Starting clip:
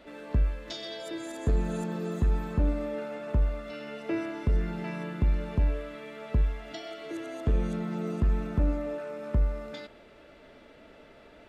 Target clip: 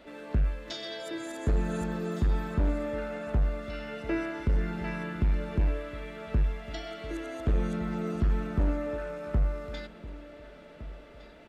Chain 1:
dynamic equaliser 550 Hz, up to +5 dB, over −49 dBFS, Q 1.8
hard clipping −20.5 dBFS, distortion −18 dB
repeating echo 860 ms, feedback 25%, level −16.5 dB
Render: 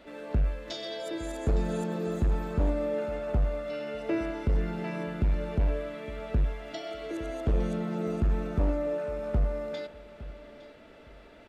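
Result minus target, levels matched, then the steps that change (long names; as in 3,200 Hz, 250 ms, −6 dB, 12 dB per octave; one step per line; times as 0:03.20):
echo 601 ms early; 2,000 Hz band −3.0 dB
change: dynamic equaliser 1,600 Hz, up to +5 dB, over −49 dBFS, Q 1.8
change: repeating echo 1,461 ms, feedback 25%, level −16.5 dB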